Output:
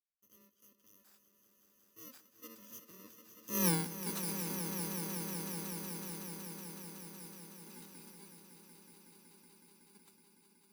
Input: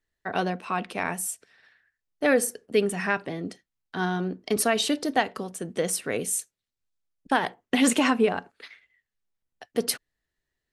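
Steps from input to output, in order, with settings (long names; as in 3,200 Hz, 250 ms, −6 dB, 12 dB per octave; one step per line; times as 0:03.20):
samples in bit-reversed order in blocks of 64 samples
source passing by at 0:03.68, 40 m/s, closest 2.3 metres
echo that builds up and dies away 186 ms, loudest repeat 5, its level −10.5 dB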